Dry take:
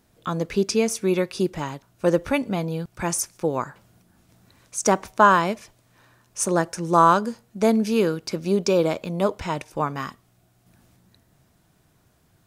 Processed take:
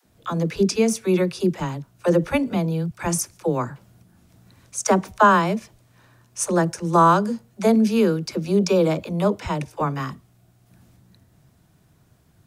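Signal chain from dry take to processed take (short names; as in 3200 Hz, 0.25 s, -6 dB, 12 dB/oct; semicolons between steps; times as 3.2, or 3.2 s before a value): bell 110 Hz +6 dB 2.3 oct; dispersion lows, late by 60 ms, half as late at 320 Hz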